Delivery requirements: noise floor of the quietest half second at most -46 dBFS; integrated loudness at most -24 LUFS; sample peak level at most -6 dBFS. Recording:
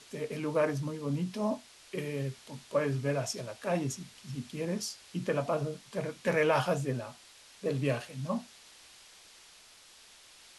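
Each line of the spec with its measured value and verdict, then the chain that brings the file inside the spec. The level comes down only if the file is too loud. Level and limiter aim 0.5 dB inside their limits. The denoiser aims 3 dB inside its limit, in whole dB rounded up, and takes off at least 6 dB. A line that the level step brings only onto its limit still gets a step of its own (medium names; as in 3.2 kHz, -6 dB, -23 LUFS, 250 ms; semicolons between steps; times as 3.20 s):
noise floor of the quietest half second -57 dBFS: pass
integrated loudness -33.5 LUFS: pass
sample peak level -15.5 dBFS: pass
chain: none needed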